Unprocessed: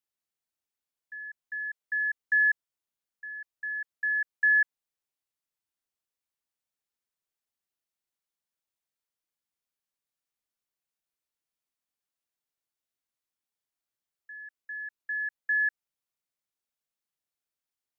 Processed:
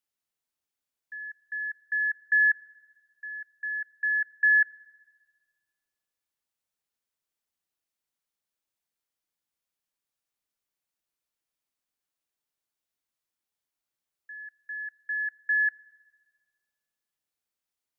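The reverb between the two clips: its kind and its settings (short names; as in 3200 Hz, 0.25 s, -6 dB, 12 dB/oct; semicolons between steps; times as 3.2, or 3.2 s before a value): FDN reverb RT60 1.6 s, high-frequency decay 0.95×, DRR 16.5 dB; gain +1.5 dB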